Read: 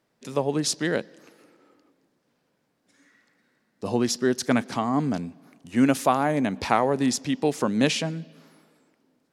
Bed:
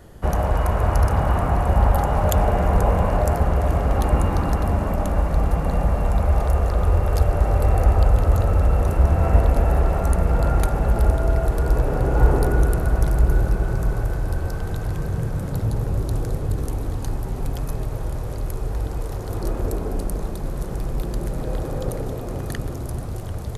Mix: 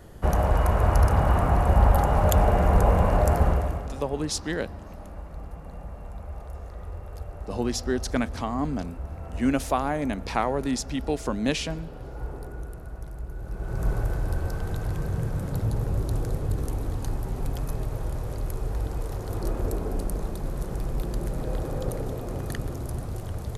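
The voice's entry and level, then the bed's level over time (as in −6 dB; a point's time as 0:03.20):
3.65 s, −4.0 dB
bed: 0:03.49 −1.5 dB
0:04.03 −19 dB
0:13.36 −19 dB
0:13.87 −3.5 dB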